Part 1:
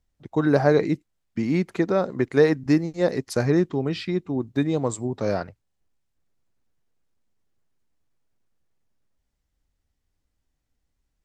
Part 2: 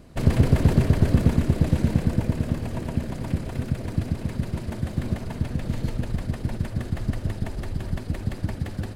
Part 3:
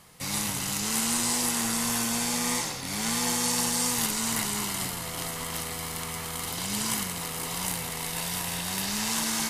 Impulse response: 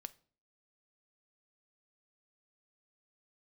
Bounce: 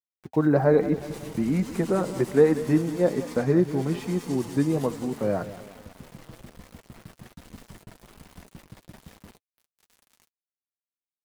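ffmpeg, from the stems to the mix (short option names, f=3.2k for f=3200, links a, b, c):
-filter_complex "[0:a]aemphasis=mode=reproduction:type=75fm,volume=2dB,asplit=3[a][b][c];[b]volume=-14.5dB[d];[1:a]lowshelf=f=190:g=-8.5,adelay=450,volume=-10dB,asplit=3[e][f][g];[f]volume=-10dB[h];[g]volume=-19.5dB[i];[2:a]acrossover=split=810[j][k];[j]aeval=exprs='val(0)*(1-0.5/2+0.5/2*cos(2*PI*9.8*n/s))':c=same[l];[k]aeval=exprs='val(0)*(1-0.5/2-0.5/2*cos(2*PI*9.8*n/s))':c=same[m];[l][m]amix=inputs=2:normalize=0,adelay=800,volume=-6dB,afade=t=out:st=4.88:d=0.54:silence=0.375837,asplit=3[n][o][p];[o]volume=-23dB[q];[p]volume=-18dB[r];[c]apad=whole_len=414768[s];[e][s]sidechaincompress=threshold=-25dB:ratio=8:attack=16:release=828[t];[3:a]atrim=start_sample=2205[u];[h][q]amix=inputs=2:normalize=0[v];[v][u]afir=irnorm=-1:irlink=0[w];[d][i][r]amix=inputs=3:normalize=0,aecho=0:1:184|368|552|736|920|1104|1288|1472:1|0.56|0.314|0.176|0.0983|0.0551|0.0308|0.0173[x];[a][t][n][w][x]amix=inputs=5:normalize=0,highshelf=f=3.5k:g=-10,aeval=exprs='val(0)*gte(abs(val(0)),0.01)':c=same,flanger=delay=3.9:depth=2.5:regen=-44:speed=1.2:shape=sinusoidal"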